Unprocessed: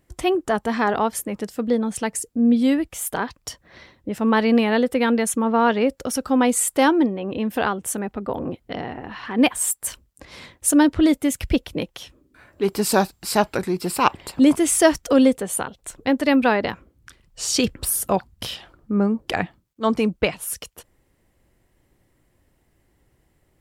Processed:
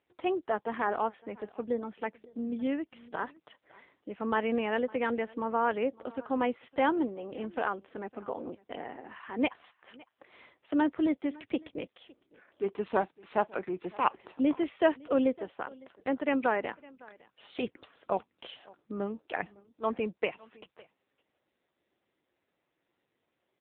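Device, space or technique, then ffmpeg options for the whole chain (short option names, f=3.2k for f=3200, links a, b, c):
satellite phone: -af "highpass=310,lowpass=3.1k,aecho=1:1:558:0.0668,volume=-8dB" -ar 8000 -c:a libopencore_amrnb -b:a 6700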